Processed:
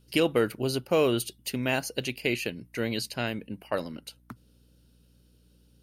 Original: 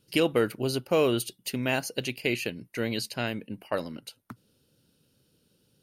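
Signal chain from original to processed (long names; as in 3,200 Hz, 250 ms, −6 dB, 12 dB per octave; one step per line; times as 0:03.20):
mains hum 60 Hz, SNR 31 dB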